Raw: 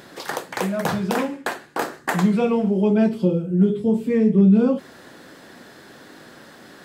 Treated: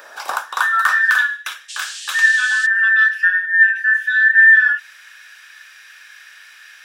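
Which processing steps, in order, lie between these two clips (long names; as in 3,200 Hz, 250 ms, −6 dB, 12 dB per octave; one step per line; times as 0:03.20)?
frequency inversion band by band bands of 2,000 Hz
0:01.68–0:02.65: noise in a band 2,900–8,500 Hz −36 dBFS
high-pass filter sweep 630 Hz → 2,200 Hz, 0:00.06–0:01.42
level +2 dB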